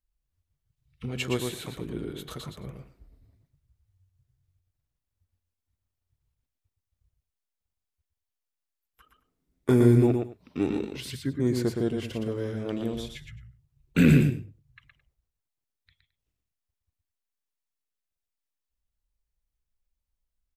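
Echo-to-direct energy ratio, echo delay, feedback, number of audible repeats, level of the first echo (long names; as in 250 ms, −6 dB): −5.0 dB, 117 ms, repeats not evenly spaced, 2, −5.0 dB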